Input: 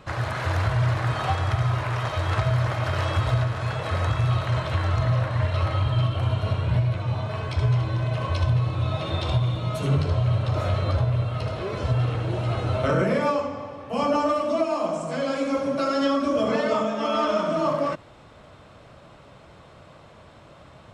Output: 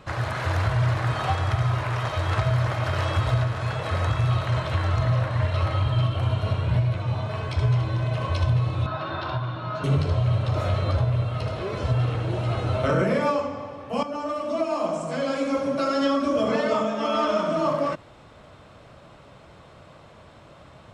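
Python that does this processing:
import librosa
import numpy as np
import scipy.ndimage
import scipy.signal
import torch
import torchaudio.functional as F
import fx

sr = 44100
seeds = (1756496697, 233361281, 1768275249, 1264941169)

y = fx.cabinet(x, sr, low_hz=160.0, low_slope=12, high_hz=4400.0, hz=(200.0, 470.0, 1000.0, 1500.0, 2200.0, 3400.0), db=(-8, -9, 4, 10, -7, -8), at=(8.86, 9.84))
y = fx.edit(y, sr, fx.fade_in_from(start_s=14.03, length_s=0.79, floor_db=-12.5), tone=tone)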